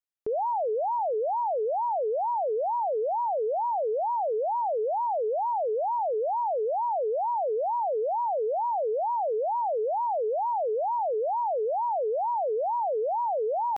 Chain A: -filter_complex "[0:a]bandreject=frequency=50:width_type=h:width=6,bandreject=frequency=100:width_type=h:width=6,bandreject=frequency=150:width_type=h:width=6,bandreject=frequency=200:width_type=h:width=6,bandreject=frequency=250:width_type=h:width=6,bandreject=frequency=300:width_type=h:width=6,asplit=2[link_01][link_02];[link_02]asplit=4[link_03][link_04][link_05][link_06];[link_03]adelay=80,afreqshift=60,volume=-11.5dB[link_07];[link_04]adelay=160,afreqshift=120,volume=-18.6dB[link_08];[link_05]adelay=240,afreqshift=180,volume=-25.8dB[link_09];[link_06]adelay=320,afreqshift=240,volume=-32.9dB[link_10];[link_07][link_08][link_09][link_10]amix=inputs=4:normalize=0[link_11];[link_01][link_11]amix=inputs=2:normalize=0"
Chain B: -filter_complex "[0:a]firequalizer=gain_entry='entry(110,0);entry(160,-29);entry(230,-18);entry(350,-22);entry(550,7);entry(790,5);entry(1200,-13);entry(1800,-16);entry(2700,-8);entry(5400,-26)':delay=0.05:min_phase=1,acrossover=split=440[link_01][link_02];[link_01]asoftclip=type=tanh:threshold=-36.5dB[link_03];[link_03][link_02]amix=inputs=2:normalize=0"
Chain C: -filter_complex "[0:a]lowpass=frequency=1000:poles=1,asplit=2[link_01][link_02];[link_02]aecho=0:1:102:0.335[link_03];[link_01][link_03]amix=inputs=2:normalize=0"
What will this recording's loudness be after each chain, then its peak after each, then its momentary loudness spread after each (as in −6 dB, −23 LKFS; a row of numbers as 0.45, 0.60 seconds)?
−27.5, −25.5, −29.0 LKFS; −21.0, −18.0, −22.5 dBFS; 0, 1, 0 LU